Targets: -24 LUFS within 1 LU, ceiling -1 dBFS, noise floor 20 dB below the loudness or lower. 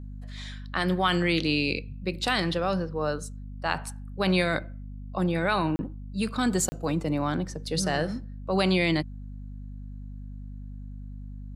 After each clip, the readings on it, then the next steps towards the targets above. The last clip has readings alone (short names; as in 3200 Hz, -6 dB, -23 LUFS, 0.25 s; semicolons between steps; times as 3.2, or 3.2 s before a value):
dropouts 2; longest dropout 30 ms; hum 50 Hz; harmonics up to 250 Hz; hum level -36 dBFS; loudness -27.5 LUFS; peak -9.0 dBFS; loudness target -24.0 LUFS
-> interpolate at 5.76/6.69, 30 ms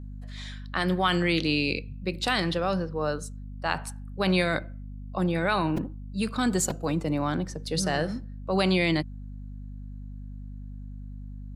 dropouts 0; hum 50 Hz; harmonics up to 250 Hz; hum level -36 dBFS
-> notches 50/100/150/200/250 Hz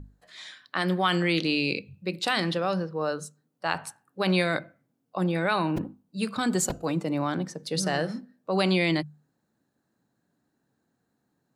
hum none; loudness -27.5 LUFS; peak -9.0 dBFS; loudness target -24.0 LUFS
-> gain +3.5 dB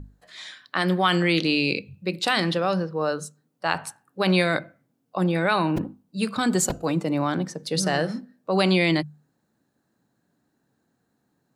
loudness -24.0 LUFS; peak -5.5 dBFS; noise floor -73 dBFS